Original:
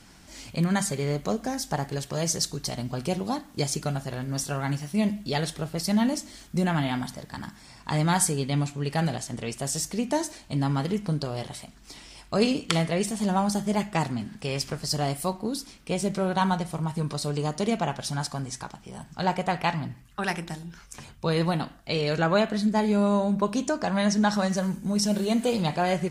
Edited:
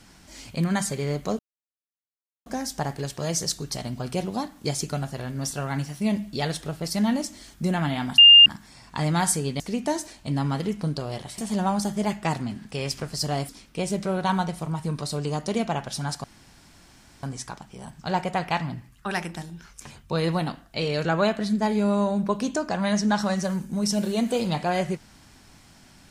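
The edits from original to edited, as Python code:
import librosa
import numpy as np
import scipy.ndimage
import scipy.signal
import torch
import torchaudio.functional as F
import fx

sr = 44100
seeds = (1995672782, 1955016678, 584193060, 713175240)

y = fx.edit(x, sr, fx.insert_silence(at_s=1.39, length_s=1.07),
    fx.bleep(start_s=7.11, length_s=0.28, hz=2810.0, db=-7.0),
    fx.cut(start_s=8.53, length_s=1.32),
    fx.cut(start_s=11.63, length_s=1.45),
    fx.cut(start_s=15.19, length_s=0.42),
    fx.insert_room_tone(at_s=18.36, length_s=0.99), tone=tone)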